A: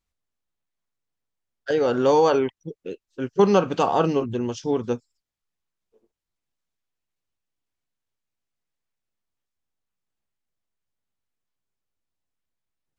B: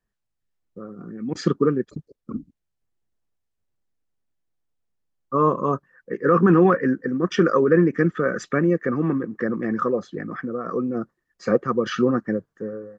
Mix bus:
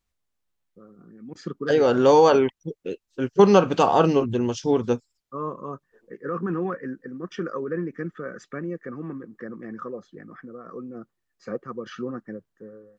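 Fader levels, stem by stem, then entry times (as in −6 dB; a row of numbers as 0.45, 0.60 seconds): +2.5, −12.0 decibels; 0.00, 0.00 seconds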